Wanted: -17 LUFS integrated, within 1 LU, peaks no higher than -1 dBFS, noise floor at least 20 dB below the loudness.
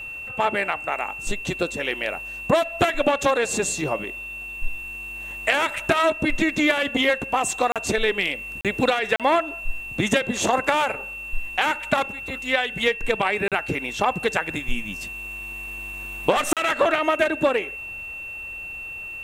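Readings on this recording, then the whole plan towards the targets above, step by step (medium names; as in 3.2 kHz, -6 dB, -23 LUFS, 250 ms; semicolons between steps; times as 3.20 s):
dropouts 5; longest dropout 37 ms; steady tone 2.7 kHz; tone level -32 dBFS; loudness -23.5 LUFS; peak level -2.5 dBFS; loudness target -17.0 LUFS
-> interpolate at 7.72/8.61/9.16/13.48/16.53 s, 37 ms; band-stop 2.7 kHz, Q 30; trim +6.5 dB; peak limiter -1 dBFS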